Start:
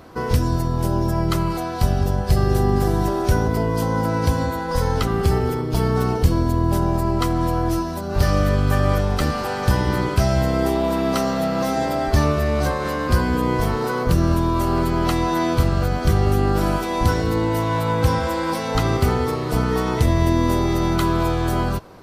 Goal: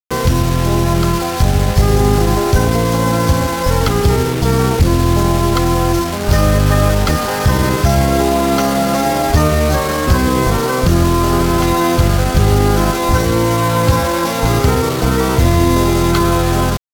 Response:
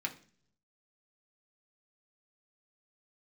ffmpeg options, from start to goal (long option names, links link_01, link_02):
-filter_complex "[0:a]aresample=16000,aresample=44100,asplit=2[link_01][link_02];[link_02]aeval=exprs='0.708*sin(PI/2*2*val(0)/0.708)':channel_layout=same,volume=-8dB[link_03];[link_01][link_03]amix=inputs=2:normalize=0,asetrate=57330,aresample=44100,acrusher=bits=3:mix=0:aa=0.000001,asetrate=35002,aresample=44100,atempo=1.25992"